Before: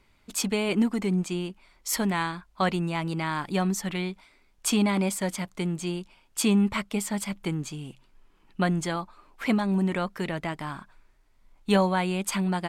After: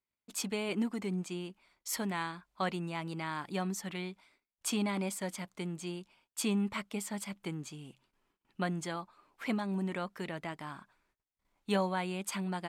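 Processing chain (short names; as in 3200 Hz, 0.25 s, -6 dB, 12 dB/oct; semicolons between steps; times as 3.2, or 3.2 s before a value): gate -58 dBFS, range -23 dB; HPF 140 Hz 6 dB/oct; gain -8 dB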